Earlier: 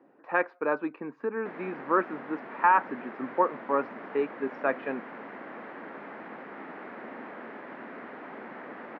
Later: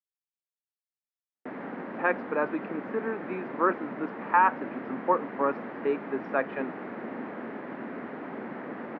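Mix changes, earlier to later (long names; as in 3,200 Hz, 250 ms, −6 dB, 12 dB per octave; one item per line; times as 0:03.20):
speech: entry +1.70 s
background: add low-shelf EQ 380 Hz +11.5 dB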